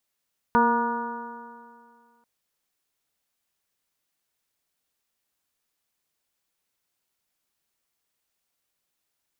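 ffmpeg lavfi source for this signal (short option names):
-f lavfi -i "aevalsrc='0.0794*pow(10,-3*t/2.14)*sin(2*PI*233.27*t)+0.0631*pow(10,-3*t/2.14)*sin(2*PI*468.14*t)+0.0224*pow(10,-3*t/2.14)*sin(2*PI*706.2*t)+0.141*pow(10,-3*t/2.14)*sin(2*PI*948.99*t)+0.0501*pow(10,-3*t/2.14)*sin(2*PI*1198.03*t)+0.0531*pow(10,-3*t/2.14)*sin(2*PI*1454.73*t)+0.00891*pow(10,-3*t/2.14)*sin(2*PI*1720.45*t)':d=1.69:s=44100"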